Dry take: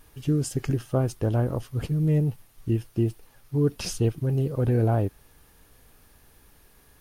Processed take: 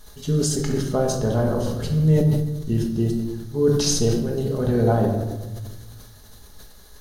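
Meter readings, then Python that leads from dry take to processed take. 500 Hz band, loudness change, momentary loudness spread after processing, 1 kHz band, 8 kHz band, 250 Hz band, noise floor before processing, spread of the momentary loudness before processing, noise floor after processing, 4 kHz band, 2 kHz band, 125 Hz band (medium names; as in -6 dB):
+7.0 dB, +4.5 dB, 9 LU, +6.5 dB, +12.0 dB, +5.0 dB, -58 dBFS, 6 LU, -46 dBFS, +11.0 dB, +5.0 dB, +2.5 dB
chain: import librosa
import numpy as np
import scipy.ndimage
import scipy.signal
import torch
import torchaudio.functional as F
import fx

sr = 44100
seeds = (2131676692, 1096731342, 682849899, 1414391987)

y = fx.graphic_eq_31(x, sr, hz=(125, 315, 2500, 4000, 6300), db=(-10, -7, -11, 11, 9))
y = fx.room_shoebox(y, sr, seeds[0], volume_m3=640.0, walls='mixed', distance_m=1.4)
y = fx.sustainer(y, sr, db_per_s=44.0)
y = y * 10.0 ** (3.0 / 20.0)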